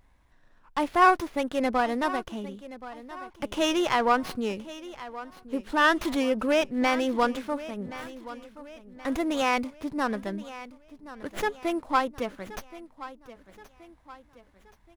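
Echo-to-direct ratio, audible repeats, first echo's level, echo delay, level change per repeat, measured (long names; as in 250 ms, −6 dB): −15.0 dB, 3, −16.0 dB, 1,075 ms, −7.0 dB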